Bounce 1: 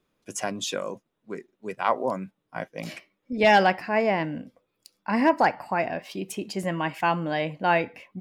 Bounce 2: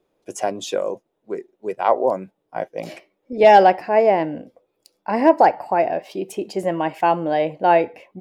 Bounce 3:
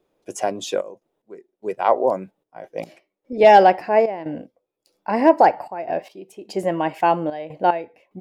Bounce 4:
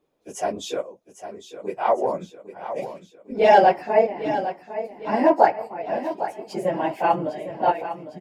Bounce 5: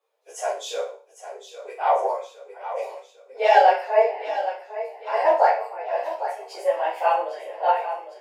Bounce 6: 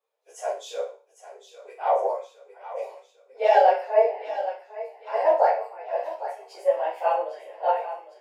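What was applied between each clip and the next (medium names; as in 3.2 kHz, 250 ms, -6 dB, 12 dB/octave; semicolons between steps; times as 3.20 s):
high-order bell 530 Hz +10 dB; trim -1 dB
trance gate "xxxx.x.." 74 bpm -12 dB
phase randomisation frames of 50 ms; on a send: feedback delay 804 ms, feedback 50%, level -11.5 dB; on the sum: trim -3 dB
steep high-pass 460 Hz 48 dB/octave; flutter echo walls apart 5.2 m, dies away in 0.4 s; three-phase chorus; trim +2 dB
dynamic bell 530 Hz, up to +8 dB, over -31 dBFS, Q 1.3; trim -7 dB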